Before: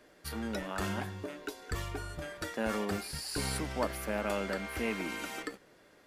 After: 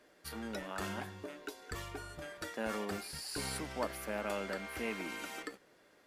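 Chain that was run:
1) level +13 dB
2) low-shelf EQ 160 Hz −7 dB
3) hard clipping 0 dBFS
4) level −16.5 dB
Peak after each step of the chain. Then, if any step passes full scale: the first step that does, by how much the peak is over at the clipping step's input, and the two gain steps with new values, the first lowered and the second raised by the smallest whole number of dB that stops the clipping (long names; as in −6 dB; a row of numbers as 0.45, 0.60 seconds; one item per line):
−6.0, −6.0, −6.0, −22.5 dBFS
no step passes full scale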